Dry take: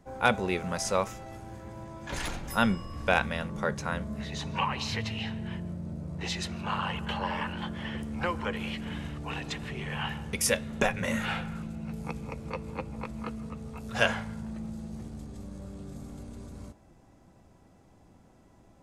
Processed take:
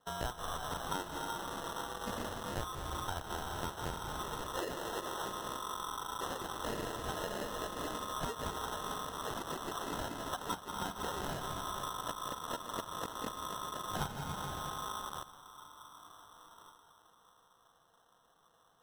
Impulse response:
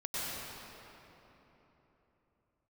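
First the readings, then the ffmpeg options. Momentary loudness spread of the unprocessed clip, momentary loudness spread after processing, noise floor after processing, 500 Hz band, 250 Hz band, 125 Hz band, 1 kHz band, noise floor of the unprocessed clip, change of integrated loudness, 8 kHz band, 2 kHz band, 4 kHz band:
16 LU, 4 LU, −68 dBFS, −8.0 dB, −11.5 dB, −11.0 dB, −3.5 dB, −58 dBFS, −7.5 dB, −5.5 dB, −12.5 dB, −5.5 dB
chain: -filter_complex "[0:a]asplit=2[link_01][link_02];[link_02]asoftclip=type=tanh:threshold=-20.5dB,volume=-10.5dB[link_03];[link_01][link_03]amix=inputs=2:normalize=0,highpass=frequency=410:poles=1,asplit=2[link_04][link_05];[1:a]atrim=start_sample=2205,adelay=42[link_06];[link_05][link_06]afir=irnorm=-1:irlink=0,volume=-11dB[link_07];[link_04][link_07]amix=inputs=2:normalize=0,lowpass=frequency=3200:width_type=q:width=0.5098,lowpass=frequency=3200:width_type=q:width=0.6013,lowpass=frequency=3200:width_type=q:width=0.9,lowpass=frequency=3200:width_type=q:width=2.563,afreqshift=-3800,bandreject=frequency=1200:width=5.9,afwtdn=0.01,highshelf=frequency=2200:gain=-5.5,acompressor=threshold=-49dB:ratio=6,acrusher=samples=19:mix=1:aa=0.000001,volume=12dB" -ar 48000 -c:a libmp3lame -b:a 80k

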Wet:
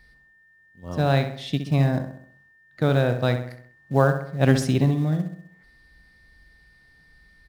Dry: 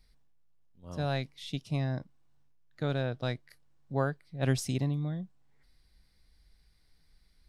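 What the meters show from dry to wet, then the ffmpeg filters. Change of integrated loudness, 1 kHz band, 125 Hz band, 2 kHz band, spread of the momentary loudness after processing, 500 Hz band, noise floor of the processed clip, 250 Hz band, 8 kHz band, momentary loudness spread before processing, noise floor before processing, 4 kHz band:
+11.0 dB, +11.5 dB, +10.5 dB, +10.5 dB, 9 LU, +12.0 dB, −58 dBFS, +11.5 dB, +5.0 dB, 9 LU, −67 dBFS, +7.5 dB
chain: -filter_complex "[0:a]highpass=frequency=57:poles=1,highshelf=frequency=4100:gain=-9,asplit=2[link_01][link_02];[link_02]adelay=65,lowpass=frequency=3000:poles=1,volume=-8dB,asplit=2[link_03][link_04];[link_04]adelay=65,lowpass=frequency=3000:poles=1,volume=0.51,asplit=2[link_05][link_06];[link_06]adelay=65,lowpass=frequency=3000:poles=1,volume=0.51,asplit=2[link_07][link_08];[link_08]adelay=65,lowpass=frequency=3000:poles=1,volume=0.51,asplit=2[link_09][link_10];[link_10]adelay=65,lowpass=frequency=3000:poles=1,volume=0.51,asplit=2[link_11][link_12];[link_12]adelay=65,lowpass=frequency=3000:poles=1,volume=0.51[link_13];[link_01][link_03][link_05][link_07][link_09][link_11][link_13]amix=inputs=7:normalize=0,aeval=exprs='val(0)+0.000501*sin(2*PI*1800*n/s)':channel_layout=same,asplit=2[link_14][link_15];[link_15]acrusher=bits=4:mode=log:mix=0:aa=0.000001,volume=-11dB[link_16];[link_14][link_16]amix=inputs=2:normalize=0,volume=9dB"

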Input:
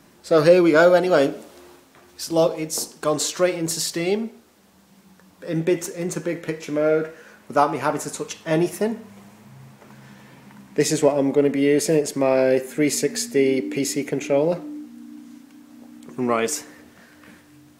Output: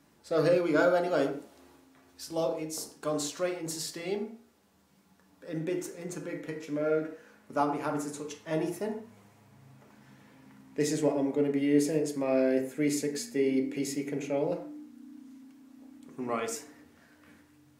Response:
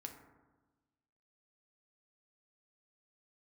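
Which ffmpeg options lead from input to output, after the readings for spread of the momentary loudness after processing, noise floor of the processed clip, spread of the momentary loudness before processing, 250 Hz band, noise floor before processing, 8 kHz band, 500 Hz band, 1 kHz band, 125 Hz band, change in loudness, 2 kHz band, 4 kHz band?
15 LU, −63 dBFS, 13 LU, −8.0 dB, −53 dBFS, −12.0 dB, −10.5 dB, −10.0 dB, −10.0 dB, −10.0 dB, −11.0 dB, −11.5 dB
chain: -filter_complex "[1:a]atrim=start_sample=2205,atrim=end_sample=6174[link_01];[0:a][link_01]afir=irnorm=-1:irlink=0,volume=-6.5dB"

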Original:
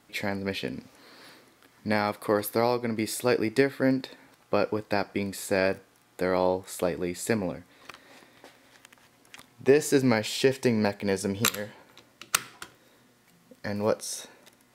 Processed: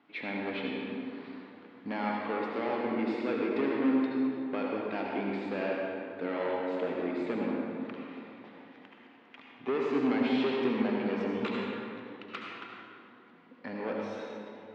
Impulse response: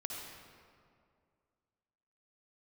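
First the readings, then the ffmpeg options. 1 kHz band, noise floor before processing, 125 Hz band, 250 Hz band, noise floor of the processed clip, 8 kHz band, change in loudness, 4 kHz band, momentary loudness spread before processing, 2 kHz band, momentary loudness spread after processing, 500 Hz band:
−4.0 dB, −62 dBFS, −11.0 dB, −1.5 dB, −56 dBFS, below −30 dB, −5.5 dB, −9.5 dB, 14 LU, −5.5 dB, 17 LU, −6.0 dB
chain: -filter_complex "[0:a]asoftclip=type=tanh:threshold=-23.5dB,highpass=260,equalizer=frequency=270:width_type=q:width=4:gain=7,equalizer=frequency=540:width_type=q:width=4:gain=-7,equalizer=frequency=1700:width_type=q:width=4:gain=-4,lowpass=frequency=3000:width=0.5412,lowpass=frequency=3000:width=1.3066[link_01];[1:a]atrim=start_sample=2205,asetrate=34398,aresample=44100[link_02];[link_01][link_02]afir=irnorm=-1:irlink=0"

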